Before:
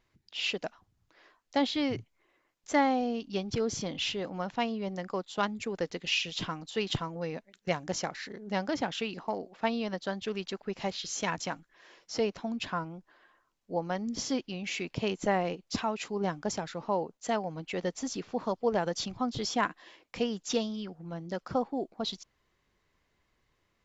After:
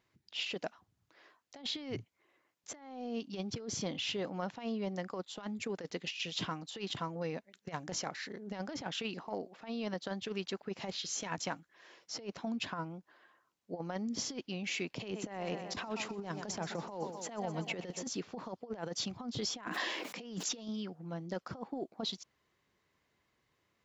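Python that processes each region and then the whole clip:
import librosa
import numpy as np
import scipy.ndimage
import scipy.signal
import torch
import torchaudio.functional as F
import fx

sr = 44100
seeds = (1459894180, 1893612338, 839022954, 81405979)

y = fx.chain(x, sr, fx.echo_feedback(ms=125, feedback_pct=57, wet_db=-15.5),
    fx.band_squash(depth_pct=70), at=(14.97, 18.07))
y = fx.chain(y, sr, fx.brickwall_highpass(low_hz=160.0),
    fx.sustainer(db_per_s=29.0), at=(19.64, 20.68))
y = scipy.signal.sosfilt(scipy.signal.butter(2, 91.0, 'highpass', fs=sr, output='sos'), y)
y = fx.over_compress(y, sr, threshold_db=-33.0, ratio=-0.5)
y = F.gain(torch.from_numpy(y), -4.5).numpy()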